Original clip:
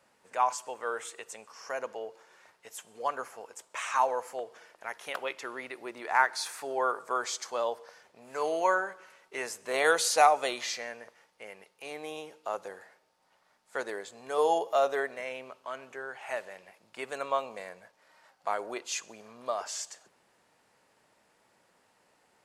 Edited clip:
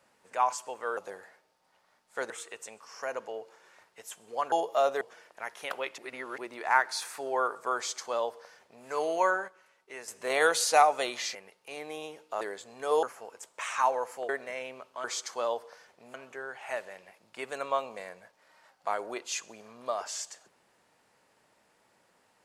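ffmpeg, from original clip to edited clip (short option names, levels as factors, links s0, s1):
-filter_complex "[0:a]asplit=15[s0][s1][s2][s3][s4][s5][s6][s7][s8][s9][s10][s11][s12][s13][s14];[s0]atrim=end=0.972[s15];[s1]atrim=start=12.548:end=13.882[s16];[s2]atrim=start=0.968:end=3.192[s17];[s3]atrim=start=14.498:end=14.992[s18];[s4]atrim=start=4.448:end=5.422[s19];[s5]atrim=start=5.418:end=5.822,asetpts=PTS-STARTPTS,areverse[s20];[s6]atrim=start=5.818:end=8.922[s21];[s7]atrim=start=8.918:end=9.522,asetpts=PTS-STARTPTS,volume=0.398[s22];[s8]atrim=start=9.518:end=10.792[s23];[s9]atrim=start=11.488:end=12.552[s24];[s10]atrim=start=13.878:end=14.502[s25];[s11]atrim=start=3.188:end=4.452[s26];[s12]atrim=start=14.988:end=15.742[s27];[s13]atrim=start=7.198:end=8.302[s28];[s14]atrim=start=15.738[s29];[s15][s16]acrossfade=d=0.004:c1=hsin:c2=hsin[s30];[s30][s17]acrossfade=d=0.004:c1=hsin:c2=hsin[s31];[s31][s18]acrossfade=d=0.004:c1=hsin:c2=hsin[s32];[s32][s19]acrossfade=d=0.004:c1=hsin:c2=hsin[s33];[s33][s20]acrossfade=d=0.004:c1=hsin:c2=hsin[s34];[s34][s21]acrossfade=d=0.004:c1=hsin:c2=hsin[s35];[s35][s22]acrossfade=d=0.004:c1=hsin:c2=hsin[s36];[s36][s23]acrossfade=d=0.004:c1=hsin:c2=hsin[s37];[s37][s24]acrossfade=d=0.004:c1=hsin:c2=hsin[s38];[s38][s25]acrossfade=d=0.004:c1=hsin:c2=hsin[s39];[s39][s26]acrossfade=d=0.004:c1=hsin:c2=hsin[s40];[s40][s27]acrossfade=d=0.004:c1=hsin:c2=hsin[s41];[s41][s28]acrossfade=d=0.004:c1=hsin:c2=hsin[s42];[s42][s29]acrossfade=d=0.004:c1=hsin:c2=hsin"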